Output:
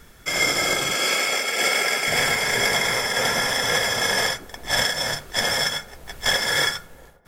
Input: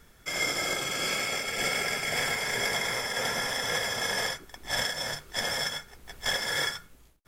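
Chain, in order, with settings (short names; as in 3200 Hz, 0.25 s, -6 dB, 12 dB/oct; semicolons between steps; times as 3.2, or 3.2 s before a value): 0.95–2.07 HPF 290 Hz 12 dB/oct; dark delay 0.404 s, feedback 34%, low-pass 840 Hz, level -20 dB; gain +8 dB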